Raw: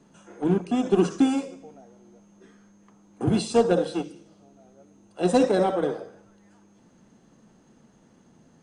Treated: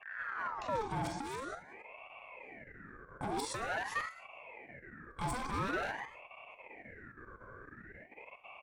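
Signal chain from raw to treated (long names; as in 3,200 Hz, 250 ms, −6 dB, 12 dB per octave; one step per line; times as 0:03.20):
turntable start at the beginning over 0.92 s
noise gate −44 dBFS, range −25 dB
noise in a band 460–1,100 Hz −55 dBFS
output level in coarse steps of 14 dB
on a send: ambience of single reflections 37 ms −15.5 dB, 48 ms −11 dB
on the sum: hard clipping −34 dBFS, distortion −6 dB
high-pass filter 110 Hz
in parallel at +1.5 dB: downward compressor, threshold −46 dBFS, peak gain reduction 12.5 dB
on the sum: EQ curve with evenly spaced ripples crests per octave 1.3, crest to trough 10 dB
ring modulator whose carrier an LFO sweeps 1,100 Hz, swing 55%, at 0.47 Hz
level −1.5 dB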